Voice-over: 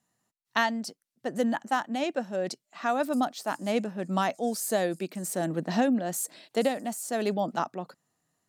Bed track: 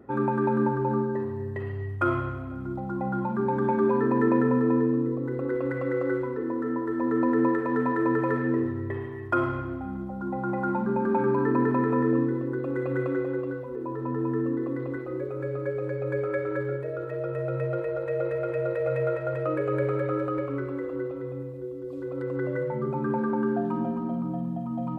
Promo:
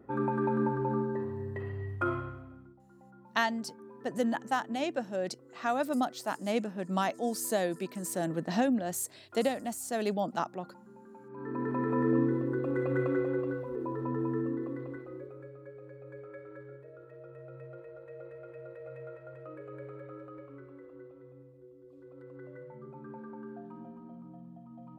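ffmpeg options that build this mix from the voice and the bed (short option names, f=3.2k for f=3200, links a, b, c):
-filter_complex "[0:a]adelay=2800,volume=-3dB[a];[1:a]volume=20.5dB,afade=t=out:st=1.94:d=0.81:silence=0.0749894,afade=t=in:st=11.29:d=0.97:silence=0.0530884,afade=t=out:st=13.76:d=1.79:silence=0.149624[b];[a][b]amix=inputs=2:normalize=0"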